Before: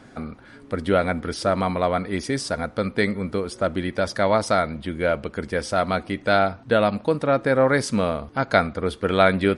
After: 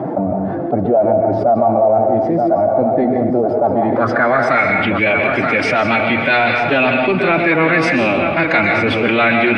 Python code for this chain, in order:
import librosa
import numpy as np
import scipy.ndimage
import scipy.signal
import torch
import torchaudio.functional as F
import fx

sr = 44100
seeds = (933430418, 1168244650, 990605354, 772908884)

p1 = fx.spec_quant(x, sr, step_db=15)
p2 = scipy.signal.sosfilt(scipy.signal.butter(4, 87.0, 'highpass', fs=sr, output='sos'), p1)
p3 = fx.high_shelf(p2, sr, hz=5600.0, db=9.5)
p4 = 10.0 ** (-16.5 / 20.0) * np.tanh(p3 / 10.0 ** (-16.5 / 20.0))
p5 = p3 + F.gain(torch.from_numpy(p4), -9.0).numpy()
p6 = fx.pitch_keep_formants(p5, sr, semitones=3.5)
p7 = fx.filter_sweep_lowpass(p6, sr, from_hz=700.0, to_hz=2500.0, start_s=3.52, end_s=4.72, q=5.5)
p8 = p7 + fx.echo_single(p7, sr, ms=928, db=-12.0, dry=0)
p9 = fx.rev_plate(p8, sr, seeds[0], rt60_s=0.64, hf_ratio=0.8, predelay_ms=115, drr_db=6.5)
p10 = fx.env_flatten(p9, sr, amount_pct=70)
y = F.gain(torch.from_numpy(p10), -5.5).numpy()